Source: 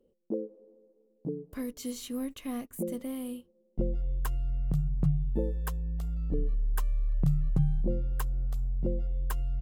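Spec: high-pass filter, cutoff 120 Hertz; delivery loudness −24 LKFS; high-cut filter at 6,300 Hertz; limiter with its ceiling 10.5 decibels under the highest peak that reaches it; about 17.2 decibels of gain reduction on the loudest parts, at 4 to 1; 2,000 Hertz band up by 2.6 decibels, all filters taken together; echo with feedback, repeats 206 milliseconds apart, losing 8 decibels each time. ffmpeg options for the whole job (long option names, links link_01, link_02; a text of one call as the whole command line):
ffmpeg -i in.wav -af "highpass=120,lowpass=6300,equalizer=frequency=2000:width_type=o:gain=3.5,acompressor=threshold=-46dB:ratio=4,alimiter=level_in=16.5dB:limit=-24dB:level=0:latency=1,volume=-16.5dB,aecho=1:1:206|412|618|824|1030:0.398|0.159|0.0637|0.0255|0.0102,volume=26dB" out.wav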